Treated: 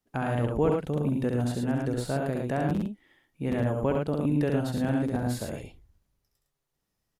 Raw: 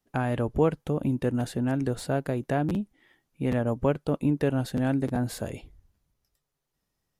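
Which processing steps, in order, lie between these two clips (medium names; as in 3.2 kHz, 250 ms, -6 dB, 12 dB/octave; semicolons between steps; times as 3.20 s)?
loudspeakers at several distances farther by 23 m -4 dB, 37 m -4 dB; trim -3 dB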